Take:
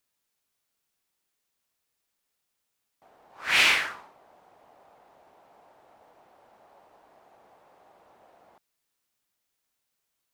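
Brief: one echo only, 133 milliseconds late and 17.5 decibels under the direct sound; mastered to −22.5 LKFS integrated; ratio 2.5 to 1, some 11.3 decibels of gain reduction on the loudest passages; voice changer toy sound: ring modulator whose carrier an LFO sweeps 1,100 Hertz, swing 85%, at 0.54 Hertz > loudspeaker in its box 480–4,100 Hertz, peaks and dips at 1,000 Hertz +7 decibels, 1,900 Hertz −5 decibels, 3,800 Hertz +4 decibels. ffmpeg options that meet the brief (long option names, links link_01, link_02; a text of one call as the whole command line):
ffmpeg -i in.wav -af "acompressor=threshold=-34dB:ratio=2.5,aecho=1:1:133:0.133,aeval=exprs='val(0)*sin(2*PI*1100*n/s+1100*0.85/0.54*sin(2*PI*0.54*n/s))':channel_layout=same,highpass=480,equalizer=frequency=1000:width_type=q:width=4:gain=7,equalizer=frequency=1900:width_type=q:width=4:gain=-5,equalizer=frequency=3800:width_type=q:width=4:gain=4,lowpass=frequency=4100:width=0.5412,lowpass=frequency=4100:width=1.3066,volume=15.5dB" out.wav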